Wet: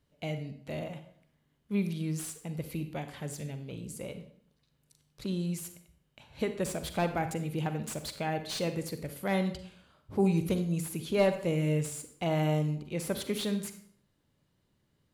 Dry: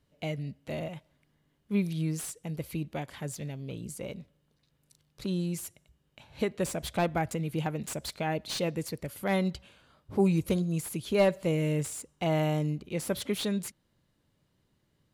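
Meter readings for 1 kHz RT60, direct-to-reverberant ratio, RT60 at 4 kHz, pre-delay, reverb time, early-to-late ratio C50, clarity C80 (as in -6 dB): 0.55 s, 8.5 dB, 0.50 s, 39 ms, 0.60 s, 10.0 dB, 13.0 dB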